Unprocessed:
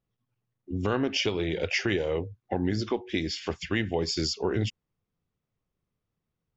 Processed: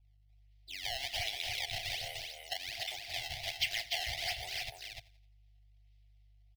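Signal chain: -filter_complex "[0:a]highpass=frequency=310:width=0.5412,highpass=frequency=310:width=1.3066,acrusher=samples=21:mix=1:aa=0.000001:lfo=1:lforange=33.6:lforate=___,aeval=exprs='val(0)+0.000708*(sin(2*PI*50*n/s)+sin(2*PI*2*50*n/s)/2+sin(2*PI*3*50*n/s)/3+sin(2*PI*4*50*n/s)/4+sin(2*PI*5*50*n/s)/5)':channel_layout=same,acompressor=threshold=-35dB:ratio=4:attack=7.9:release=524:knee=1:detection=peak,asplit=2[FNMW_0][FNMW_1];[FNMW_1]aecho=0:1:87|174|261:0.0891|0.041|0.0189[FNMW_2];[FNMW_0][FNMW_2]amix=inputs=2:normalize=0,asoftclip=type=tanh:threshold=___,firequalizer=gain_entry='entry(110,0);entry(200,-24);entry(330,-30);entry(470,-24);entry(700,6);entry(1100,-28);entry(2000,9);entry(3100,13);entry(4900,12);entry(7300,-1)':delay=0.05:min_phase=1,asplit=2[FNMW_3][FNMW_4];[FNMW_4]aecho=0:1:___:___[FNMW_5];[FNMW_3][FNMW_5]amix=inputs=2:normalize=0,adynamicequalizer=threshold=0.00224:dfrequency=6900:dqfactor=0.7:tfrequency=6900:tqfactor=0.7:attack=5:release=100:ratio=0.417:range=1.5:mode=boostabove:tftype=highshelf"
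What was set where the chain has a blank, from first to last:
1.3, -30dB, 297, 0.596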